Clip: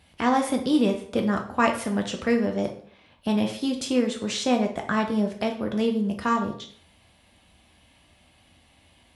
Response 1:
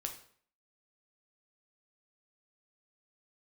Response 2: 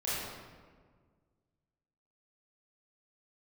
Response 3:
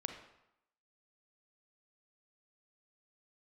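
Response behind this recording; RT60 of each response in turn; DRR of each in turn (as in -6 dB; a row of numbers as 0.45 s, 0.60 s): 1; 0.55 s, 1.7 s, 0.85 s; 3.0 dB, -10.5 dB, 5.0 dB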